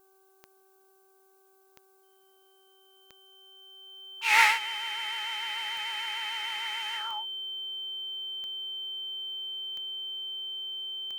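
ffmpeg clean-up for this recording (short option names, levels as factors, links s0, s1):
-af "adeclick=t=4,bandreject=f=384.1:t=h:w=4,bandreject=f=768.2:t=h:w=4,bandreject=f=1152.3:t=h:w=4,bandreject=f=1536.4:t=h:w=4,bandreject=f=3100:w=30,agate=range=0.0891:threshold=0.00178"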